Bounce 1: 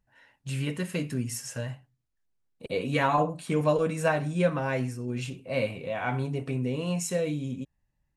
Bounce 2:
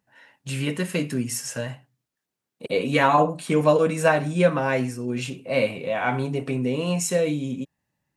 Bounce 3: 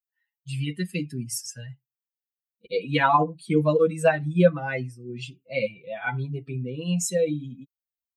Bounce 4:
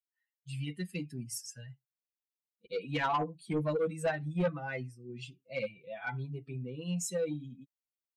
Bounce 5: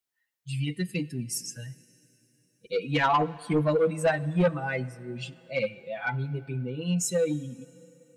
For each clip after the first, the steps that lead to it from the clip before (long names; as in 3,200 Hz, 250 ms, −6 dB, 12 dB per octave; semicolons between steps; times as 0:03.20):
high-pass filter 160 Hz 12 dB per octave; level +6.5 dB
spectral dynamics exaggerated over time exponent 2; comb filter 6 ms, depth 61%
soft clipping −15.5 dBFS, distortion −13 dB; level −8.5 dB
dense smooth reverb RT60 3.5 s, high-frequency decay 0.95×, DRR 19 dB; level +7.5 dB